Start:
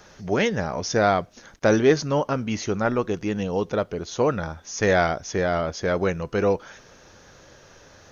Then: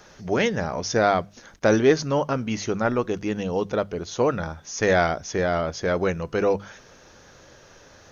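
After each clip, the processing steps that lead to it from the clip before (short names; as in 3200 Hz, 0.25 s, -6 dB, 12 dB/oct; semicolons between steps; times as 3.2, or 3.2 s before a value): notches 50/100/150/200 Hz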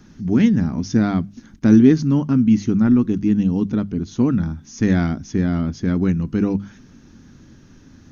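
resonant low shelf 370 Hz +13 dB, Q 3; gain -5.5 dB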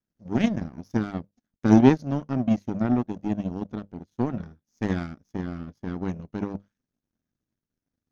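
power-law curve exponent 2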